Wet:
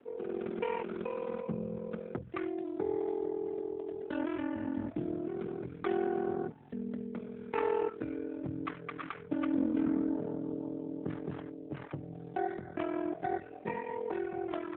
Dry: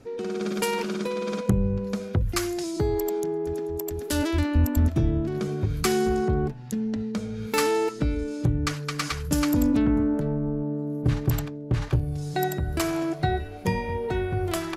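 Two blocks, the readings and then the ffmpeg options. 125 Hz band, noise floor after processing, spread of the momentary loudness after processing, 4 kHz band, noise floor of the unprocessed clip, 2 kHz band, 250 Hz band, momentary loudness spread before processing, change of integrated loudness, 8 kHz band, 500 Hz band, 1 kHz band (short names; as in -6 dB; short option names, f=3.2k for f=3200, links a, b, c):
-20.5 dB, -48 dBFS, 9 LU, under -20 dB, -37 dBFS, -11.5 dB, -9.0 dB, 7 LU, -10.0 dB, under -40 dB, -7.0 dB, -8.0 dB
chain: -filter_complex "[0:a]aeval=exprs='val(0)*sin(2*PI*21*n/s)':c=same,acrossover=split=210 2600:gain=0.126 1 0.224[a][b][c];[a][b][c]amix=inputs=3:normalize=0,volume=-3.5dB" -ar 8000 -c:a libopencore_amrnb -b:a 7950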